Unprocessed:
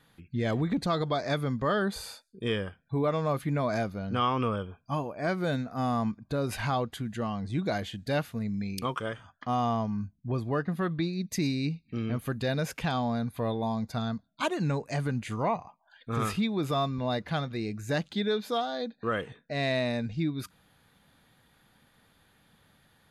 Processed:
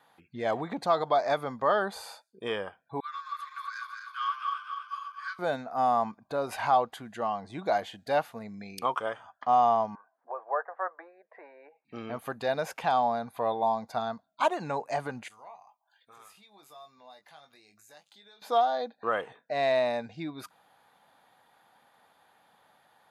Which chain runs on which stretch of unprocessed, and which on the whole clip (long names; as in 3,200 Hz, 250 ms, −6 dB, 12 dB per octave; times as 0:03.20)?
0:03.00–0:05.39: feedback delay that plays each chunk backwards 125 ms, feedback 76%, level −5 dB + Chebyshev high-pass with heavy ripple 1,100 Hz, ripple 9 dB
0:09.95–0:11.85: elliptic band-pass filter 500–1,700 Hz, stop band 60 dB + upward compression, threshold −55 dBFS
0:15.28–0:18.42: first-order pre-emphasis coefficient 0.9 + downward compressor 4 to 1, threshold −52 dBFS + double-tracking delay 20 ms −6.5 dB
whole clip: high-pass filter 440 Hz 6 dB per octave; parametric band 800 Hz +14.5 dB 1.3 octaves; level −4 dB